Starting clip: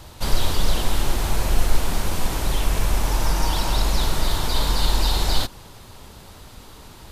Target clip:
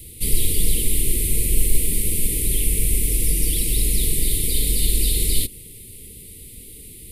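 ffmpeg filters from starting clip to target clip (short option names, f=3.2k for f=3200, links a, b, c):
-af "highshelf=f=7.7k:t=q:w=3:g=9.5,asoftclip=type=hard:threshold=-5.5dB,asuperstop=centerf=990:order=20:qfactor=0.66"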